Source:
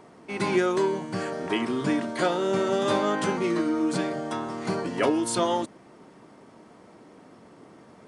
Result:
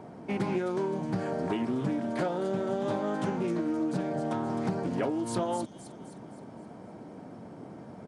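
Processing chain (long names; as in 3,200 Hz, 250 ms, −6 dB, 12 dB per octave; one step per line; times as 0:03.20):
high-pass filter 73 Hz
tilt shelving filter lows +7 dB
comb filter 1.3 ms, depth 31%
downward compressor, threshold −29 dBFS, peak gain reduction 13 dB
on a send: delay with a high-pass on its return 261 ms, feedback 48%, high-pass 4,800 Hz, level −4 dB
on the sum: highs frequency-modulated by the lows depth 0.26 ms
level +1.5 dB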